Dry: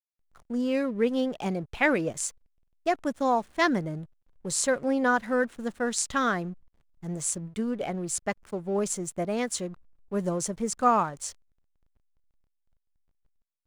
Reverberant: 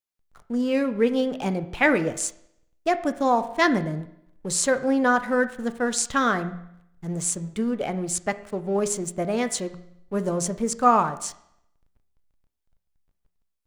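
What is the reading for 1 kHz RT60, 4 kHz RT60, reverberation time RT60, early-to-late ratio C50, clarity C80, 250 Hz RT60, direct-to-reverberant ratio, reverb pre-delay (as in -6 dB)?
0.75 s, 0.75 s, 0.75 s, 14.0 dB, 16.5 dB, 0.75 s, 10.0 dB, 6 ms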